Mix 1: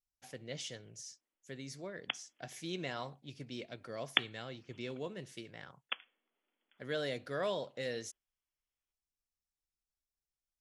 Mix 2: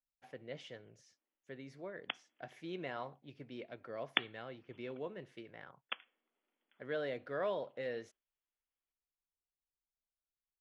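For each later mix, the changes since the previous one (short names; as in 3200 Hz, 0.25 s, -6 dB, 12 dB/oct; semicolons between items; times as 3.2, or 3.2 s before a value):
speech: add tone controls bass -7 dB, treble -14 dB; master: add bell 7900 Hz -9 dB 2.1 oct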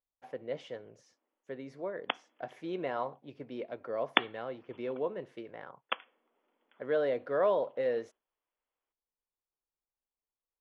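background +4.0 dB; master: add graphic EQ 250/500/1000 Hz +4/+8/+8 dB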